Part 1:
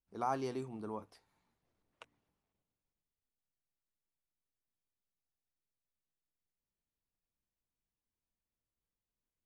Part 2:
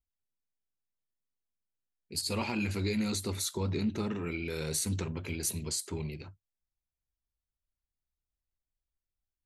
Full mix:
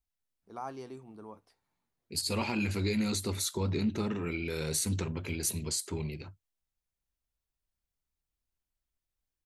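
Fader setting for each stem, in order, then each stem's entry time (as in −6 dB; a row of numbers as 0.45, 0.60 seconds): −5.0, +1.0 decibels; 0.35, 0.00 seconds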